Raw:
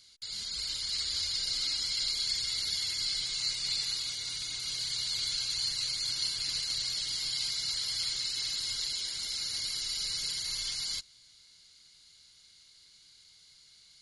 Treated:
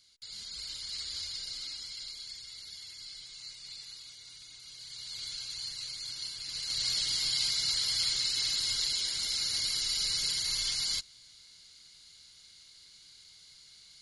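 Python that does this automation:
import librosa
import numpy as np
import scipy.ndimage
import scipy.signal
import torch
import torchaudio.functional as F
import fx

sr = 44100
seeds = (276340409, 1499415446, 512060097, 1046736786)

y = fx.gain(x, sr, db=fx.line((1.21, -5.5), (2.44, -13.5), (4.75, -13.5), (5.24, -7.0), (6.46, -7.0), (6.88, 3.0)))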